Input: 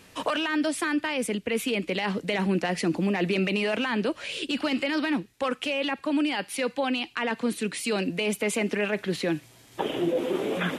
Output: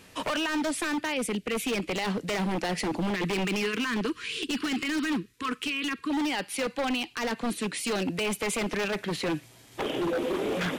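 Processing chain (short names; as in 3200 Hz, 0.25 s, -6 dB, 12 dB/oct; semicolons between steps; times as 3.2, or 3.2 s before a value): 1.14–1.64 bell 1100 Hz -11 dB 0.67 oct; 3.15–6.1 spectral gain 490–990 Hz -26 dB; wavefolder -23 dBFS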